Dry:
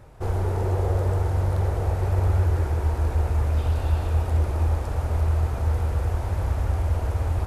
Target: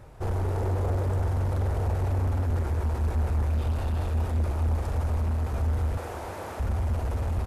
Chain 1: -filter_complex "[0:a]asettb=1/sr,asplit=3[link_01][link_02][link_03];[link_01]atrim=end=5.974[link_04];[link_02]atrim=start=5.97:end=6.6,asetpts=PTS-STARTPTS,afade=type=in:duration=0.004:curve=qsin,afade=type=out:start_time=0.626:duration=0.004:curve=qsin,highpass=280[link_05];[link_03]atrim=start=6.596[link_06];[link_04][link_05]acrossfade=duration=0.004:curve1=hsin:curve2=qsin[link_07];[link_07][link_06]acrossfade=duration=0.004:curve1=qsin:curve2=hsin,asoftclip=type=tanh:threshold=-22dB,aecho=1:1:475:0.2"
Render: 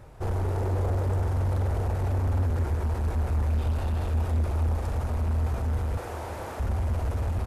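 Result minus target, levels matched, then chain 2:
echo 144 ms late
-filter_complex "[0:a]asettb=1/sr,asplit=3[link_01][link_02][link_03];[link_01]atrim=end=5.974[link_04];[link_02]atrim=start=5.97:end=6.6,asetpts=PTS-STARTPTS,afade=type=in:duration=0.004:curve=qsin,afade=type=out:start_time=0.626:duration=0.004:curve=qsin,highpass=280[link_05];[link_03]atrim=start=6.596[link_06];[link_04][link_05]acrossfade=duration=0.004:curve1=hsin:curve2=qsin[link_07];[link_07][link_06]acrossfade=duration=0.004:curve1=qsin:curve2=hsin,asoftclip=type=tanh:threshold=-22dB,aecho=1:1:331:0.2"

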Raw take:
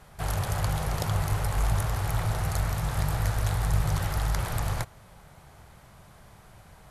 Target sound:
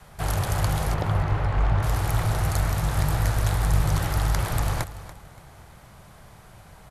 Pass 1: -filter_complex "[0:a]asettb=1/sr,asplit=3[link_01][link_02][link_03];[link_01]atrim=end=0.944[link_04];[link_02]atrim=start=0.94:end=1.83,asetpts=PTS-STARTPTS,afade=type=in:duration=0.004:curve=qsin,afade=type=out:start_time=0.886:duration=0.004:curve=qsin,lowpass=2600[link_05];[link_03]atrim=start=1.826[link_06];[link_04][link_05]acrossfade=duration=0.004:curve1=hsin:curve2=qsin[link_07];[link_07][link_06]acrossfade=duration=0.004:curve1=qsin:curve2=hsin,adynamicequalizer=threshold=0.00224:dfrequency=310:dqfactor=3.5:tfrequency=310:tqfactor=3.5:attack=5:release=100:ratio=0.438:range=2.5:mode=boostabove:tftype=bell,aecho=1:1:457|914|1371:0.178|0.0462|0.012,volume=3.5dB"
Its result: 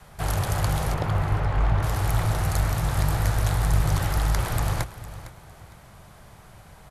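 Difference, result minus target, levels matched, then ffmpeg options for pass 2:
echo 171 ms late
-filter_complex "[0:a]asettb=1/sr,asplit=3[link_01][link_02][link_03];[link_01]atrim=end=0.944[link_04];[link_02]atrim=start=0.94:end=1.83,asetpts=PTS-STARTPTS,afade=type=in:duration=0.004:curve=qsin,afade=type=out:start_time=0.886:duration=0.004:curve=qsin,lowpass=2600[link_05];[link_03]atrim=start=1.826[link_06];[link_04][link_05]acrossfade=duration=0.004:curve1=hsin:curve2=qsin[link_07];[link_07][link_06]acrossfade=duration=0.004:curve1=qsin:curve2=hsin,adynamicequalizer=threshold=0.00224:dfrequency=310:dqfactor=3.5:tfrequency=310:tqfactor=3.5:attack=5:release=100:ratio=0.438:range=2.5:mode=boostabove:tftype=bell,aecho=1:1:286|572|858:0.178|0.0462|0.012,volume=3.5dB"

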